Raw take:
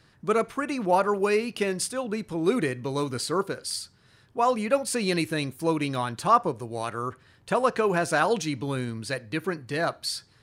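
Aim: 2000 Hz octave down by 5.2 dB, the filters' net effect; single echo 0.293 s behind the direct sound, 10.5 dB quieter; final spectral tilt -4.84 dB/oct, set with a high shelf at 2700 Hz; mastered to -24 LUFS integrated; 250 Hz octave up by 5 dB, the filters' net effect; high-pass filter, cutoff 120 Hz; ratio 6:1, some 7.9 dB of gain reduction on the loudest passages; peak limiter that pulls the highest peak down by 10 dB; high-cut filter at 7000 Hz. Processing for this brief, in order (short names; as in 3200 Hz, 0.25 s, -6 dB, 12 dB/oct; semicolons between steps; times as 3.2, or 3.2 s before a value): HPF 120 Hz; LPF 7000 Hz; bell 250 Hz +7 dB; bell 2000 Hz -9 dB; high shelf 2700 Hz +3.5 dB; compressor 6:1, threshold -24 dBFS; limiter -24 dBFS; echo 0.293 s -10.5 dB; gain +9 dB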